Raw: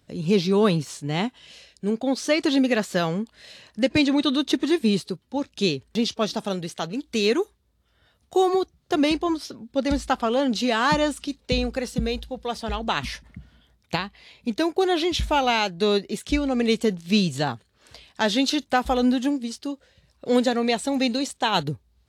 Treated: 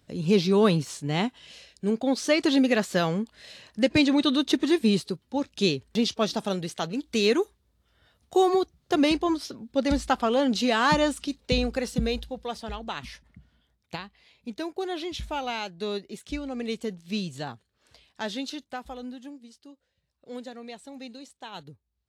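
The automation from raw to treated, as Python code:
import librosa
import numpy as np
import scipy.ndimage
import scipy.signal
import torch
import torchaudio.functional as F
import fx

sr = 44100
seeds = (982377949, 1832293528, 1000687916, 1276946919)

y = fx.gain(x, sr, db=fx.line((12.18, -1.0), (12.98, -10.0), (18.27, -10.0), (19.11, -18.5)))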